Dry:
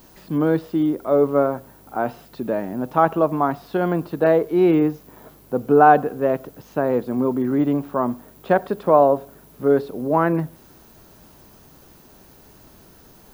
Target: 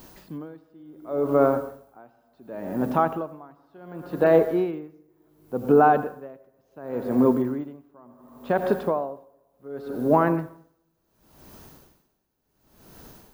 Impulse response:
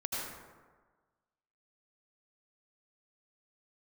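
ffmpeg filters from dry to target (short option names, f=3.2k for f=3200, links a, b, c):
-filter_complex "[0:a]alimiter=limit=-9.5dB:level=0:latency=1:release=65,asplit=2[a][b];[1:a]atrim=start_sample=2205[c];[b][c]afir=irnorm=-1:irlink=0,volume=-11dB[d];[a][d]amix=inputs=2:normalize=0,aeval=exprs='val(0)*pow(10,-31*(0.5-0.5*cos(2*PI*0.69*n/s))/20)':c=same"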